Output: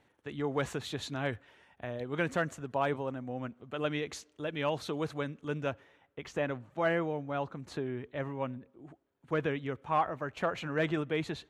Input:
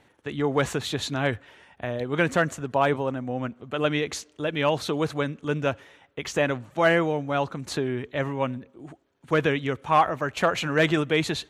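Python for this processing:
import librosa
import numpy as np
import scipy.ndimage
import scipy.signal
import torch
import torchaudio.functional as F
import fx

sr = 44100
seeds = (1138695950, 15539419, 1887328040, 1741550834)

y = fx.high_shelf(x, sr, hz=3300.0, db=fx.steps((0.0, -2.5), (5.7, -10.5)))
y = F.gain(torch.from_numpy(y), -8.5).numpy()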